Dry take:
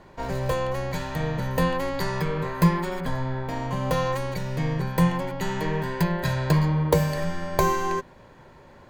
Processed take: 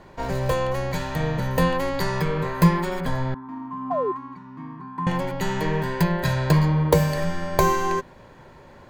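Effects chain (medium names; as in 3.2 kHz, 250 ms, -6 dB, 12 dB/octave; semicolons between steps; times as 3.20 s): 3.34–5.07 s: two resonant band-passes 530 Hz, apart 2 oct; 3.90–4.12 s: painted sound fall 350–770 Hz -27 dBFS; trim +2.5 dB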